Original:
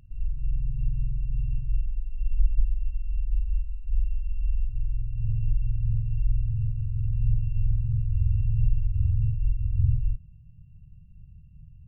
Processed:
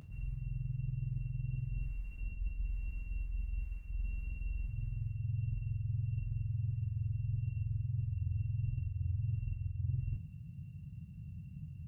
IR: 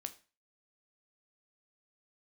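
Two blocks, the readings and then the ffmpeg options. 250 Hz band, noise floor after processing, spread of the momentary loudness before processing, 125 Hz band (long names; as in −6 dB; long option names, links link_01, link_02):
can't be measured, −49 dBFS, 8 LU, −8.5 dB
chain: -filter_complex "[0:a]highpass=120,areverse,acompressor=threshold=-44dB:ratio=6,areverse[link_01];[1:a]atrim=start_sample=2205[link_02];[link_01][link_02]afir=irnorm=-1:irlink=0,volume=12dB"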